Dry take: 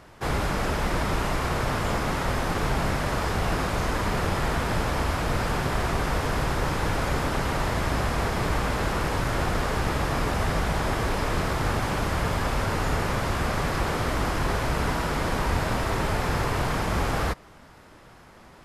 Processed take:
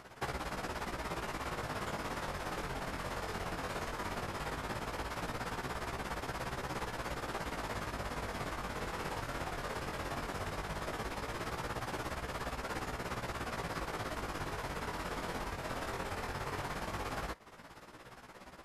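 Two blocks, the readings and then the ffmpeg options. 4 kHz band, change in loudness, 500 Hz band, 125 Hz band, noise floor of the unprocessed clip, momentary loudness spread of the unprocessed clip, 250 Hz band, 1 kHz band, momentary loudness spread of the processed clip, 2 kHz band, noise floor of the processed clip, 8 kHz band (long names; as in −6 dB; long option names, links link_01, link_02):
−11.5 dB, −13.0 dB, −12.5 dB, −17.0 dB, −50 dBFS, 1 LU, −14.5 dB, −12.0 dB, 1 LU, −11.5 dB, −53 dBFS, −12.0 dB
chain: -af "tremolo=f=17:d=0.87,acompressor=threshold=-36dB:ratio=5,flanger=delay=15.5:depth=7.2:speed=0.16,lowshelf=frequency=190:gain=-7,volume=5dB"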